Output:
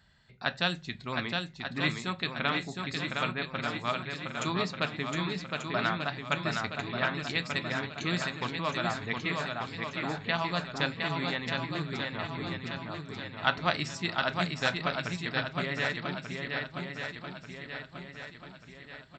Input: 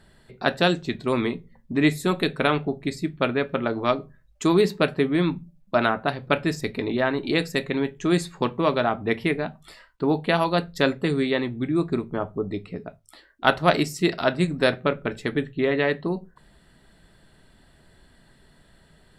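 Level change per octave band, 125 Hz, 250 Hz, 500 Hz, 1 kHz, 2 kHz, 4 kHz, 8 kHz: -6.5 dB, -11.5 dB, -13.0 dB, -6.0 dB, -3.0 dB, -2.0 dB, -5.0 dB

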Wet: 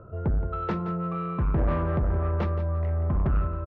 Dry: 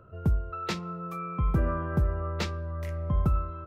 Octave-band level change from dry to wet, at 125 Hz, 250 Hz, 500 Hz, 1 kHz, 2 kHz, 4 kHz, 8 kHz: +3.0 dB, +3.5 dB, +4.5 dB, +2.0 dB, -1.5 dB, under -10 dB, no reading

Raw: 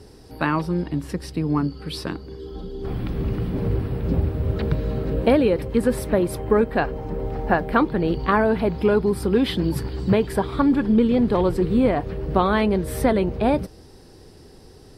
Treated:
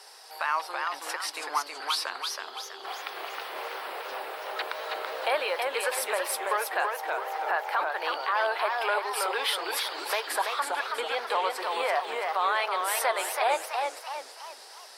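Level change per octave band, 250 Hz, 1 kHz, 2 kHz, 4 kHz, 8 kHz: -31.0 dB, -0.5 dB, +1.5 dB, +4.5 dB, +7.0 dB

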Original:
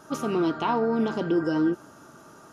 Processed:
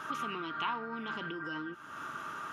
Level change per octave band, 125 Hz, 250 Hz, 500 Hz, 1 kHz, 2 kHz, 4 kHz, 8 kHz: -15.0 dB, -18.0 dB, -19.0 dB, -6.0 dB, -0.5 dB, -2.0 dB, no reading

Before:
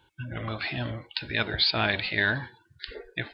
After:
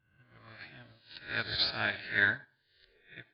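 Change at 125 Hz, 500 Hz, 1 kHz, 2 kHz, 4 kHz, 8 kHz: -13.5 dB, -10.5 dB, -8.0 dB, -3.0 dB, -7.0 dB, no reading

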